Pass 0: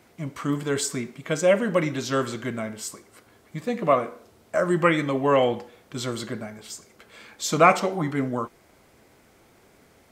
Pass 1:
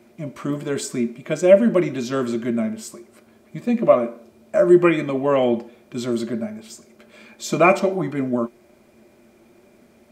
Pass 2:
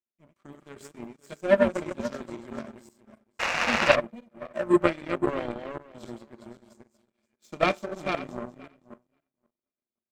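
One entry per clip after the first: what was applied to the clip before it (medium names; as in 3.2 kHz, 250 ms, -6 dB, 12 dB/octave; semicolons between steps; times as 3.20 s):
small resonant body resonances 230/350/590/2400 Hz, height 15 dB, ringing for 90 ms; trim -2.5 dB
backward echo that repeats 263 ms, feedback 45%, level -2.5 dB; painted sound noise, 3.39–3.96 s, 470–2900 Hz -14 dBFS; power-law waveshaper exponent 2; trim -2.5 dB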